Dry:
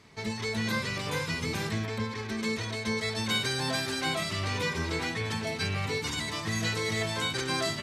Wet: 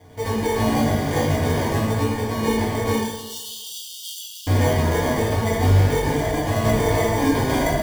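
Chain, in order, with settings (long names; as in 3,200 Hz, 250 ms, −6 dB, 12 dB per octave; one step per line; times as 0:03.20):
decimation without filtering 33×
0:02.95–0:04.47: linear-phase brick-wall high-pass 2,600 Hz
convolution reverb RT60 1.2 s, pre-delay 5 ms, DRR −7 dB
level +3 dB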